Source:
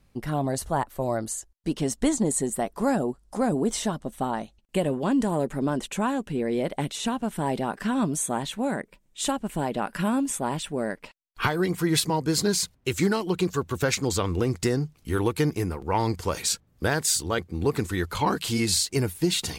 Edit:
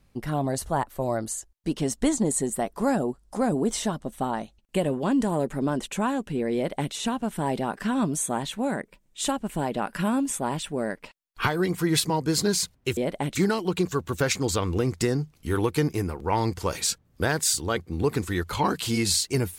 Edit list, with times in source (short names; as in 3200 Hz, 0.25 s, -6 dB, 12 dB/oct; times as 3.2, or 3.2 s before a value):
6.55–6.93 copy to 12.97